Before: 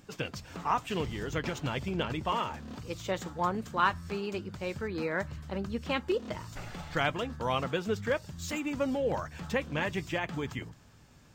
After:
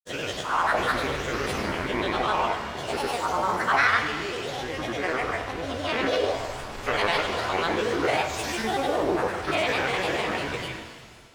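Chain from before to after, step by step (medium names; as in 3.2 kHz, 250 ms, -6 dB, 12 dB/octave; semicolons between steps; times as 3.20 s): every event in the spectrogram widened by 240 ms; peaking EQ 170 Hz -11 dB 0.83 oct; granulator, pitch spread up and down by 7 st; pitch-shifted reverb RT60 1.7 s, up +7 st, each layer -8 dB, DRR 5.5 dB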